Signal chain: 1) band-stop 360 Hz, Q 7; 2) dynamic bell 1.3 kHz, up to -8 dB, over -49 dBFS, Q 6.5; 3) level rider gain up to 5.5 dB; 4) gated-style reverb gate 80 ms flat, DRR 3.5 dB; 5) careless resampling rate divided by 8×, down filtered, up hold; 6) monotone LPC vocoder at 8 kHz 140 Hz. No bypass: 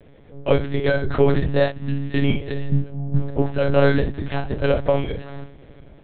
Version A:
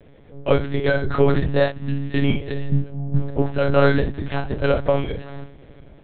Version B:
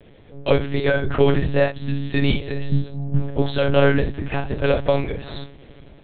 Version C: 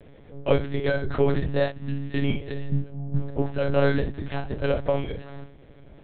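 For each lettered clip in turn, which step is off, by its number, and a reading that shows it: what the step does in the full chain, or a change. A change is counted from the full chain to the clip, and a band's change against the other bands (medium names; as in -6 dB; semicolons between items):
2, 1 kHz band +1.5 dB; 5, 4 kHz band +3.5 dB; 3, crest factor change +2.0 dB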